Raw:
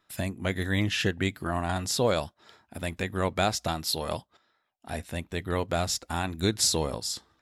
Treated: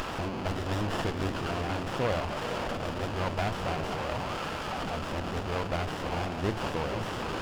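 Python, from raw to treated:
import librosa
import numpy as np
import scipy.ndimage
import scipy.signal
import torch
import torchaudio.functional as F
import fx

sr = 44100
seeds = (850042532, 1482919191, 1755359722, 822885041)

y = fx.delta_mod(x, sr, bps=16000, step_db=-25.0)
y = fx.tilt_shelf(y, sr, db=-5.5, hz=1300.0)
y = fx.echo_diffused(y, sr, ms=510, feedback_pct=41, wet_db=-7)
y = fx.running_max(y, sr, window=17)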